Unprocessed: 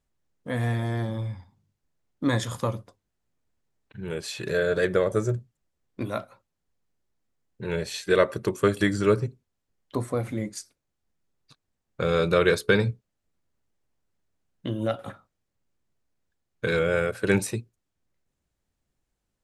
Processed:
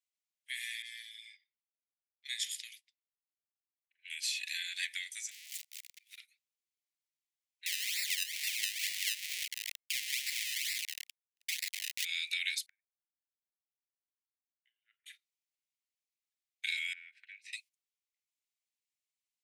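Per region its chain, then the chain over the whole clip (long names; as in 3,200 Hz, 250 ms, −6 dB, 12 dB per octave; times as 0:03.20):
0:00.82–0:04.10: low-pass that shuts in the quiet parts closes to 1,200 Hz, open at −24.5 dBFS + notch filter 6,400 Hz, Q 20 + downward compressor 2 to 1, threshold −28 dBFS
0:05.31–0:06.18: converter with a step at zero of −35 dBFS + volume swells 515 ms
0:07.66–0:12.05: linear delta modulator 64 kbit/s, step −20.5 dBFS + sample-and-hold swept by an LFO 27× 2.2 Hz
0:12.66–0:15.06: low-pass filter 1,300 Hz 24 dB per octave + gate with flip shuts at −15 dBFS, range −39 dB
0:16.93–0:17.53: low-pass filter 1,500 Hz + downward compressor, threshold −31 dBFS
whole clip: Butterworth high-pass 2,000 Hz 72 dB per octave; noise gate −60 dBFS, range −11 dB; downward compressor 6 to 1, threshold −36 dBFS; level +4.5 dB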